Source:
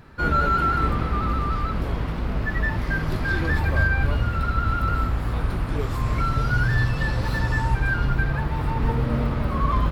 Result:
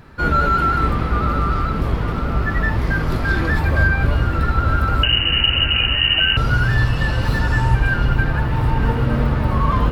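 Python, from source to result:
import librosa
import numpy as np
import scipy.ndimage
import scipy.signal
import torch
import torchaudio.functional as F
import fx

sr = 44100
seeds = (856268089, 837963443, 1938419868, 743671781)

y = fx.freq_invert(x, sr, carrier_hz=2900, at=(5.03, 6.37))
y = fx.echo_wet_lowpass(y, sr, ms=915, feedback_pct=64, hz=1100.0, wet_db=-6)
y = y * 10.0 ** (4.0 / 20.0)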